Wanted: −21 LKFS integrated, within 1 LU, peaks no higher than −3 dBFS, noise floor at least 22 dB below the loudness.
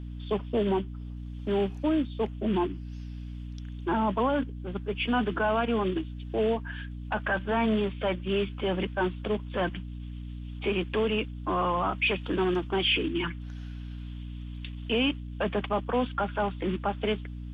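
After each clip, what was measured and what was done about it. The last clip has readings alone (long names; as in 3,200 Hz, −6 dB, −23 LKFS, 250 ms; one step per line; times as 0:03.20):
mains hum 60 Hz; hum harmonics up to 300 Hz; level of the hum −36 dBFS; integrated loudness −29.0 LKFS; sample peak −16.5 dBFS; target loudness −21.0 LKFS
→ hum removal 60 Hz, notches 5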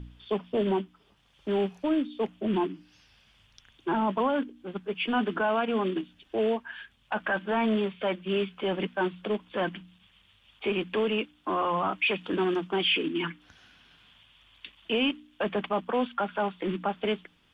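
mains hum none found; integrated loudness −29.5 LKFS; sample peak −16.5 dBFS; target loudness −21.0 LKFS
→ level +8.5 dB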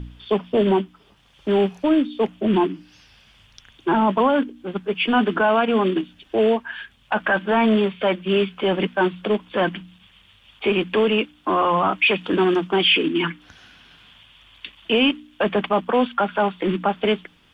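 integrated loudness −21.0 LKFS; sample peak −8.0 dBFS; background noise floor −55 dBFS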